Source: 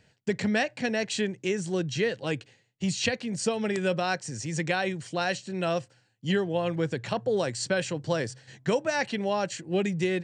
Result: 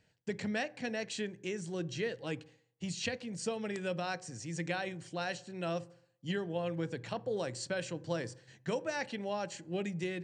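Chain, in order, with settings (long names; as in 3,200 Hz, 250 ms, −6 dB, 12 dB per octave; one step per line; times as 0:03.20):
on a send: spectral tilt −2.5 dB per octave + convolution reverb RT60 0.65 s, pre-delay 3 ms, DRR 16 dB
on the sum: level −9 dB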